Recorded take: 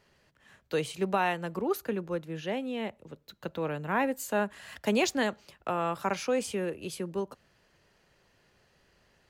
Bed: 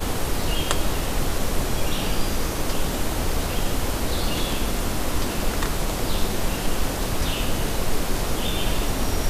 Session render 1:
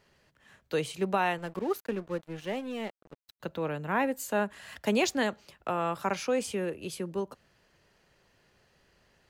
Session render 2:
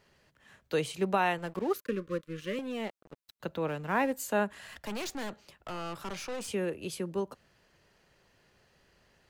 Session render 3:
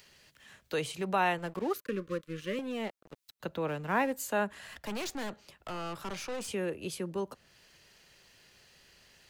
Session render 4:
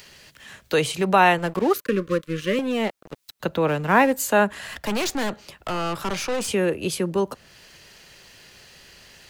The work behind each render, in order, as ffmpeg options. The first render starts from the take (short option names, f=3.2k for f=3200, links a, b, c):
-filter_complex "[0:a]asettb=1/sr,asplit=3[a][b][c];[a]atrim=end=1.384[d];[b]atrim=start=1.38:end=3.4,asetpts=PTS-STARTPTS,afade=t=in:d=0.004:c=qsin,afade=t=out:st=2.016:d=0.004:c=qsin,aeval=exprs='sgn(val(0))*max(abs(val(0))-0.00531,0)':c=same[e];[c]atrim=start=3.396[f];[d][e]acrossfade=d=0.004:c1=hsin:c2=qsin[g];[g][f]acrossfade=d=0.004:c1=qsin:c2=hsin"
-filter_complex "[0:a]asettb=1/sr,asplit=3[a][b][c];[a]atrim=end=1.744[d];[b]atrim=start=1.74:end=2.59,asetpts=PTS-STARTPTS,afade=t=in:d=0.004:c=qsin,afade=t=out:st=0.846:d=0.004:c=qsin,asuperstop=centerf=780:order=20:qfactor=1.8[e];[c]atrim=start=2.586[f];[d][e]acrossfade=d=0.004:c1=hsin:c2=qsin[g];[g][f]acrossfade=d=0.004:c1=qsin:c2=hsin,asettb=1/sr,asplit=3[h][i][j];[h]atrim=end=3.684[k];[i]atrim=start=3.68:end=4.13,asetpts=PTS-STARTPTS,afade=t=in:d=0.004:c=qsin,afade=t=out:st=0.446:d=0.004:c=qsin,aeval=exprs='sgn(val(0))*max(abs(val(0))-0.00316,0)':c=same[l];[j]atrim=start=4.126[m];[k][l]acrossfade=d=0.004:c1=hsin:c2=qsin[n];[n][m]acrossfade=d=0.004:c1=qsin:c2=hsin,asettb=1/sr,asplit=3[o][p][q];[o]atrim=end=4.674[r];[p]atrim=start=4.67:end=6.48,asetpts=PTS-STARTPTS,afade=t=in:d=0.004:c=qsin,afade=t=out:st=1.806:d=0.004:c=qsin,aeval=exprs='(tanh(56.2*val(0)+0.45)-tanh(0.45))/56.2':c=same[s];[q]atrim=start=6.476[t];[r][s]acrossfade=d=0.004:c1=hsin:c2=qsin[u];[u][t]acrossfade=d=0.004:c1=qsin:c2=hsin"
-filter_complex "[0:a]acrossover=split=600|2200[a][b][c];[a]alimiter=level_in=3.5dB:limit=-24dB:level=0:latency=1,volume=-3.5dB[d];[c]acompressor=mode=upward:threshold=-51dB:ratio=2.5[e];[d][b][e]amix=inputs=3:normalize=0"
-af "volume=12dB"